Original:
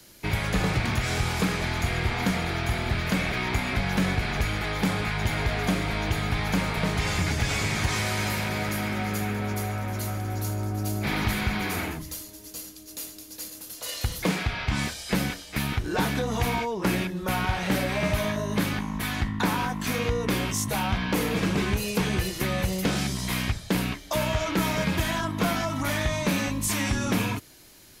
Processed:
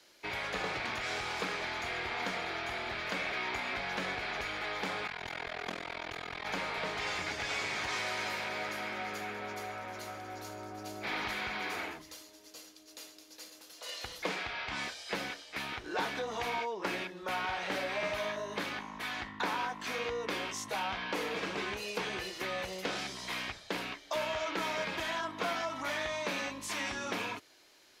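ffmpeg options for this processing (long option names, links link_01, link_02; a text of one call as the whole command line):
ffmpeg -i in.wav -filter_complex "[0:a]asettb=1/sr,asplit=3[link_01][link_02][link_03];[link_01]atrim=end=5.074[link_04];[link_02]atrim=start=5.07:end=6.46,asetpts=PTS-STARTPTS,afade=type=in:duration=0.004:curve=qsin,afade=type=out:start_time=1.386:duration=0.004:curve=qsin,tremolo=f=42:d=0.974[link_05];[link_03]atrim=start=6.456[link_06];[link_04][link_05]acrossfade=duration=0.004:curve1=hsin:curve2=qsin[link_07];[link_07][link_06]acrossfade=duration=0.004:curve1=qsin:curve2=hsin,acrossover=split=340 6200:gain=0.1 1 0.178[link_08][link_09][link_10];[link_08][link_09][link_10]amix=inputs=3:normalize=0,volume=-5.5dB" out.wav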